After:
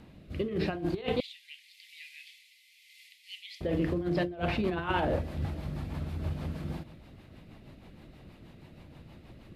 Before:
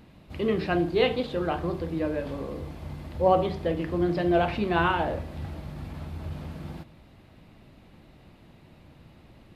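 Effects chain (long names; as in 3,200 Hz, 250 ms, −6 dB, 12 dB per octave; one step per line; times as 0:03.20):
rotating-speaker cabinet horn 0.85 Hz, later 6.3 Hz, at 0:02.76
0:01.20–0:03.61: Butterworth high-pass 2,000 Hz 96 dB per octave
compressor whose output falls as the input rises −29 dBFS, ratio −0.5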